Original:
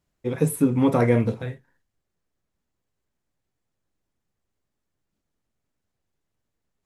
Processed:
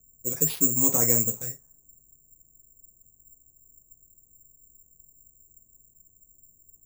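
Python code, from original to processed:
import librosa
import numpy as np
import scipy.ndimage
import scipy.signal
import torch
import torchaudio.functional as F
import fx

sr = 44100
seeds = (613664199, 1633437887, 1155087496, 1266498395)

y = fx.dmg_noise_colour(x, sr, seeds[0], colour='brown', level_db=-54.0)
y = fx.env_lowpass(y, sr, base_hz=480.0, full_db=-21.0)
y = (np.kron(y[::6], np.eye(6)[0]) * 6)[:len(y)]
y = y * librosa.db_to_amplitude(-10.5)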